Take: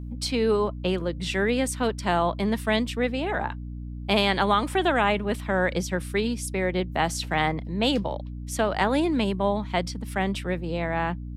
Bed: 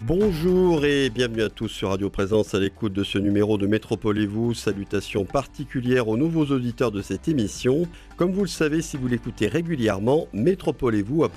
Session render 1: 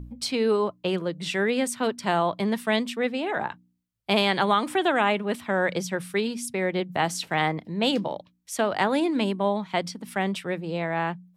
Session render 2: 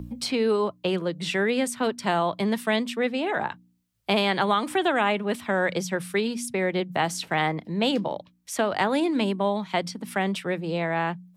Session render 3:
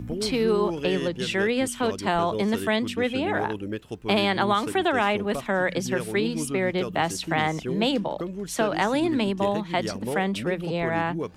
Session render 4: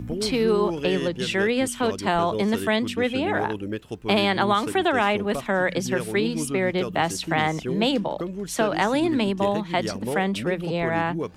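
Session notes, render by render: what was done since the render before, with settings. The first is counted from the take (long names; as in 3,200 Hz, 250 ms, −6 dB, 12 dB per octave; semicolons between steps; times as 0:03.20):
hum removal 60 Hz, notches 5
multiband upward and downward compressor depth 40%
mix in bed −10.5 dB
level +1.5 dB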